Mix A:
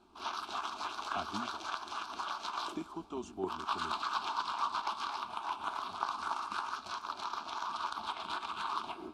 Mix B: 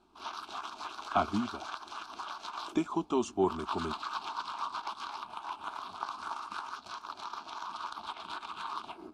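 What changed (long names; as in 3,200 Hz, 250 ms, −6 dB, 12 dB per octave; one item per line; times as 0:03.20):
speech +11.0 dB
reverb: off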